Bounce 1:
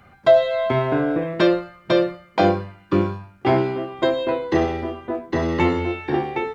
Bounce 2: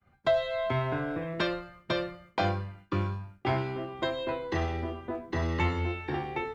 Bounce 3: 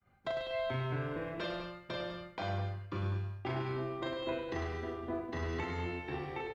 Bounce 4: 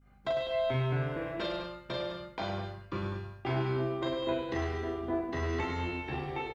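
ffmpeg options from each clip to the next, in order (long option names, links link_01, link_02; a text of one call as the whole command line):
ffmpeg -i in.wav -filter_complex "[0:a]agate=range=-33dB:threshold=-42dB:ratio=3:detection=peak,lowshelf=frequency=200:gain=7,acrossover=split=120|780|1400[link_01][link_02][link_03][link_04];[link_02]acompressor=threshold=-27dB:ratio=6[link_05];[link_01][link_05][link_03][link_04]amix=inputs=4:normalize=0,volume=-6.5dB" out.wav
ffmpeg -i in.wav -filter_complex "[0:a]alimiter=limit=-23dB:level=0:latency=1:release=244,asplit=2[link_01][link_02];[link_02]adelay=39,volume=-3dB[link_03];[link_01][link_03]amix=inputs=2:normalize=0,asplit=2[link_04][link_05];[link_05]aecho=0:1:102|201.2:0.447|0.316[link_06];[link_04][link_06]amix=inputs=2:normalize=0,volume=-5.5dB" out.wav
ffmpeg -i in.wav -filter_complex "[0:a]aeval=exprs='val(0)+0.000708*(sin(2*PI*50*n/s)+sin(2*PI*2*50*n/s)/2+sin(2*PI*3*50*n/s)/3+sin(2*PI*4*50*n/s)/4+sin(2*PI*5*50*n/s)/5)':channel_layout=same,asplit=2[link_01][link_02];[link_02]adelay=15,volume=-5dB[link_03];[link_01][link_03]amix=inputs=2:normalize=0,volume=2.5dB" out.wav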